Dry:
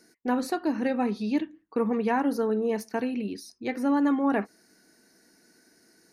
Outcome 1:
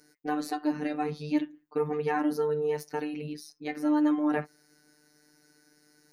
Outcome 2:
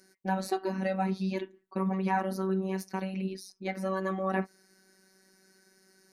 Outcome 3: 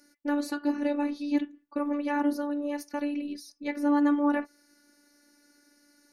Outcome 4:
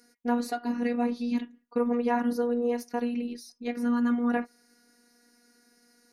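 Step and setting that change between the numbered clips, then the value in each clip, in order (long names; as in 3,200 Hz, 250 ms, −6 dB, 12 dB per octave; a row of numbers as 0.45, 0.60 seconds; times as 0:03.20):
phases set to zero, frequency: 150, 190, 290, 240 Hertz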